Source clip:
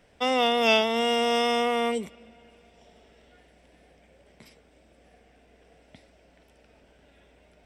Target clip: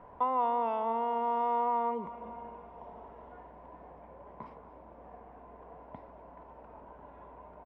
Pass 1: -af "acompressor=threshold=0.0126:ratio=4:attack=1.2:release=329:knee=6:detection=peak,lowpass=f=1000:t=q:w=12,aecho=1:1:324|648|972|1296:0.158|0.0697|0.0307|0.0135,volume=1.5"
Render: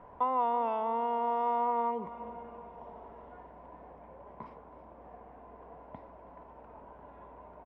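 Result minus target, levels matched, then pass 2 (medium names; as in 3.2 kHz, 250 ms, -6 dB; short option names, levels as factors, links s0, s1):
echo 94 ms late
-af "acompressor=threshold=0.0126:ratio=4:attack=1.2:release=329:knee=6:detection=peak,lowpass=f=1000:t=q:w=12,aecho=1:1:230|460|690|920:0.158|0.0697|0.0307|0.0135,volume=1.5"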